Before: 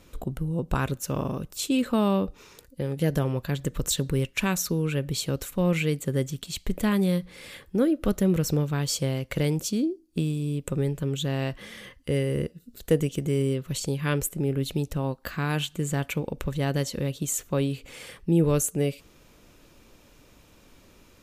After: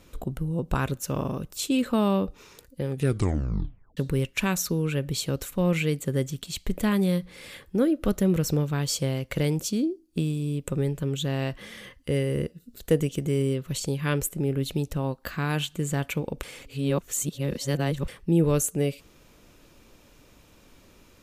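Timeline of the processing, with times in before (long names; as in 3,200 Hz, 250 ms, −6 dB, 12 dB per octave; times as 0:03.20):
0:02.90: tape stop 1.07 s
0:16.43–0:18.08: reverse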